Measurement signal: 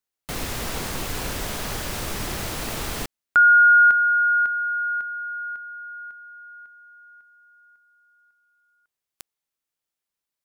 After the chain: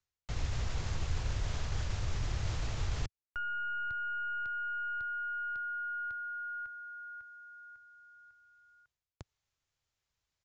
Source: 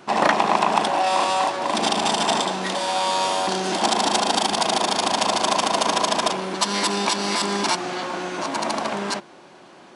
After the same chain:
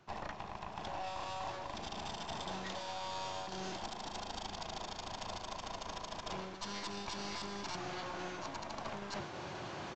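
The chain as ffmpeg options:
ffmpeg -i in.wav -filter_complex "[0:a]acrossover=split=210[link_01][link_02];[link_02]acompressor=threshold=-26dB:ratio=2.5:attack=79:release=310:knee=2.83:detection=peak[link_03];[link_01][link_03]amix=inputs=2:normalize=0,aeval=exprs='0.531*(cos(1*acos(clip(val(0)/0.531,-1,1)))-cos(1*PI/2))+0.0422*(cos(4*acos(clip(val(0)/0.531,-1,1)))-cos(4*PI/2))':channel_layout=same,areverse,acompressor=threshold=-38dB:ratio=8:attack=0.31:release=338:knee=1:detection=rms,areverse,lowshelf=frequency=150:width_type=q:width=1.5:gain=12.5,aresample=16000,aresample=44100,volume=3dB" out.wav

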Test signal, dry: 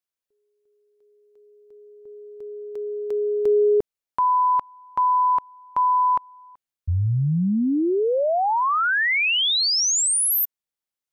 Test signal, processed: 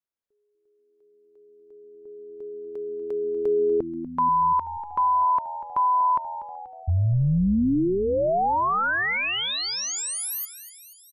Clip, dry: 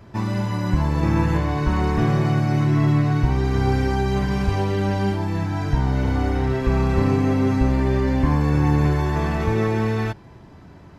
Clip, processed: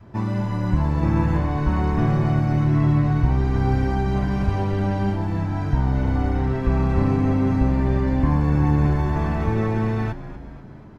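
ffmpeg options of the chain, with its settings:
ffmpeg -i in.wav -filter_complex "[0:a]highshelf=frequency=2200:gain=-10,asplit=2[link_01][link_02];[link_02]asplit=6[link_03][link_04][link_05][link_06][link_07][link_08];[link_03]adelay=241,afreqshift=-83,volume=-14dB[link_09];[link_04]adelay=482,afreqshift=-166,volume=-18.7dB[link_10];[link_05]adelay=723,afreqshift=-249,volume=-23.5dB[link_11];[link_06]adelay=964,afreqshift=-332,volume=-28.2dB[link_12];[link_07]adelay=1205,afreqshift=-415,volume=-32.9dB[link_13];[link_08]adelay=1446,afreqshift=-498,volume=-37.7dB[link_14];[link_09][link_10][link_11][link_12][link_13][link_14]amix=inputs=6:normalize=0[link_15];[link_01][link_15]amix=inputs=2:normalize=0,adynamicequalizer=threshold=0.0126:dfrequency=420:dqfactor=2.6:tfrequency=420:tqfactor=2.6:attack=5:release=100:ratio=0.375:range=2:mode=cutabove:tftype=bell" out.wav

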